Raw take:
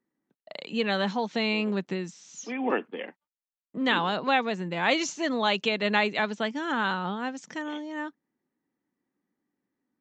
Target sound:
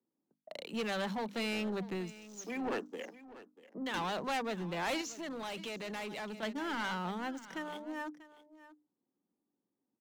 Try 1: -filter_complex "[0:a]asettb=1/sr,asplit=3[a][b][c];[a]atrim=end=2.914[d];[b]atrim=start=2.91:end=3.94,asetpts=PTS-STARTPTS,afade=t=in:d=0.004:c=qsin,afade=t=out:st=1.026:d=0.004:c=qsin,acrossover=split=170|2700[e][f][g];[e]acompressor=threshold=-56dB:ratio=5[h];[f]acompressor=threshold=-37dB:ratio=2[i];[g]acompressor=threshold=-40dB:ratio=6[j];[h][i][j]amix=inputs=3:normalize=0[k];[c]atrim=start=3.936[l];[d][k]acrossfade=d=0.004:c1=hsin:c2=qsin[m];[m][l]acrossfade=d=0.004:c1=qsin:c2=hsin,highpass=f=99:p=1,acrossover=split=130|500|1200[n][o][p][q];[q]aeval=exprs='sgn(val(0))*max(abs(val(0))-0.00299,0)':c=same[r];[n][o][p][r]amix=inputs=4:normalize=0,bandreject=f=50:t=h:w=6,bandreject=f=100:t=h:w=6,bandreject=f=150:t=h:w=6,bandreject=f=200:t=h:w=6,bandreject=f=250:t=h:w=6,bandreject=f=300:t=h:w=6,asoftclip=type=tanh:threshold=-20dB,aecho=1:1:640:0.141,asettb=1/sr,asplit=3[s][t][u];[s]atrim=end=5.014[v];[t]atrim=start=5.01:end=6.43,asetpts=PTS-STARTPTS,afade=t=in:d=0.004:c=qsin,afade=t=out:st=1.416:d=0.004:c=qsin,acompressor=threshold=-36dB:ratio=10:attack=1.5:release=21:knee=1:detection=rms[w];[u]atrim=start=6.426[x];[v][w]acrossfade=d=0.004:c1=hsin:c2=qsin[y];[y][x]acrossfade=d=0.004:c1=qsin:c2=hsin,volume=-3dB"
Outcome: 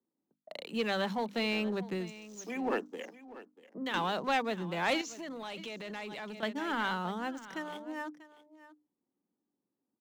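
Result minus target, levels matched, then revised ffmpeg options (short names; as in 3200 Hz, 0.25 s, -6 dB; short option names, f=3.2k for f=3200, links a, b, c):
soft clip: distortion -8 dB
-filter_complex "[0:a]asettb=1/sr,asplit=3[a][b][c];[a]atrim=end=2.914[d];[b]atrim=start=2.91:end=3.94,asetpts=PTS-STARTPTS,afade=t=in:d=0.004:c=qsin,afade=t=out:st=1.026:d=0.004:c=qsin,acrossover=split=170|2700[e][f][g];[e]acompressor=threshold=-56dB:ratio=5[h];[f]acompressor=threshold=-37dB:ratio=2[i];[g]acompressor=threshold=-40dB:ratio=6[j];[h][i][j]amix=inputs=3:normalize=0[k];[c]atrim=start=3.936[l];[d][k]acrossfade=d=0.004:c1=hsin:c2=qsin[m];[m][l]acrossfade=d=0.004:c1=qsin:c2=hsin,highpass=f=99:p=1,acrossover=split=130|500|1200[n][o][p][q];[q]aeval=exprs='sgn(val(0))*max(abs(val(0))-0.00299,0)':c=same[r];[n][o][p][r]amix=inputs=4:normalize=0,bandreject=f=50:t=h:w=6,bandreject=f=100:t=h:w=6,bandreject=f=150:t=h:w=6,bandreject=f=200:t=h:w=6,bandreject=f=250:t=h:w=6,bandreject=f=300:t=h:w=6,asoftclip=type=tanh:threshold=-28.5dB,aecho=1:1:640:0.141,asettb=1/sr,asplit=3[s][t][u];[s]atrim=end=5.014[v];[t]atrim=start=5.01:end=6.43,asetpts=PTS-STARTPTS,afade=t=in:d=0.004:c=qsin,afade=t=out:st=1.416:d=0.004:c=qsin,acompressor=threshold=-36dB:ratio=10:attack=1.5:release=21:knee=1:detection=rms[w];[u]atrim=start=6.426[x];[v][w]acrossfade=d=0.004:c1=hsin:c2=qsin[y];[y][x]acrossfade=d=0.004:c1=qsin:c2=hsin,volume=-3dB"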